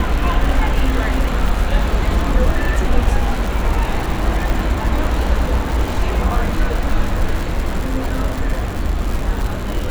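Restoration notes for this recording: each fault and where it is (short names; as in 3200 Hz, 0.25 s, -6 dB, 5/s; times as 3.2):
crackle 200/s -21 dBFS
4.5 pop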